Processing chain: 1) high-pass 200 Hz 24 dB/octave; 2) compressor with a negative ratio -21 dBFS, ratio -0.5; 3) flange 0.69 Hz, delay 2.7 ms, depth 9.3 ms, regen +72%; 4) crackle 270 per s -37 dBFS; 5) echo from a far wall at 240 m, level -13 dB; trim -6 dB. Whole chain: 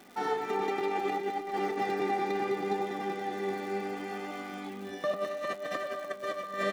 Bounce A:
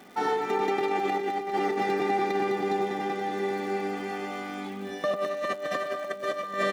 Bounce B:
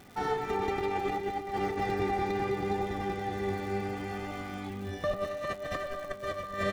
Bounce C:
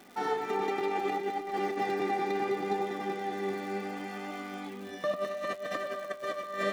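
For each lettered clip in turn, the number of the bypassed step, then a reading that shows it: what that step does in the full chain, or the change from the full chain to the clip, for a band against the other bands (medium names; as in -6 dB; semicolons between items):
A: 3, loudness change +4.0 LU; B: 1, 125 Hz band +10.0 dB; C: 5, echo-to-direct -17.5 dB to none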